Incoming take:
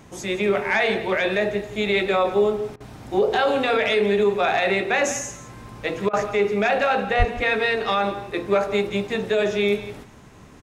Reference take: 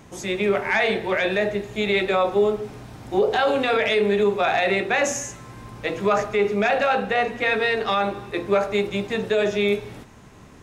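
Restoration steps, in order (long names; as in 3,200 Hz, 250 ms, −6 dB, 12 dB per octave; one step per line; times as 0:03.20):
0:07.18–0:07.30: high-pass filter 140 Hz 24 dB per octave
repair the gap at 0:02.76/0:06.09, 42 ms
echo removal 171 ms −14.5 dB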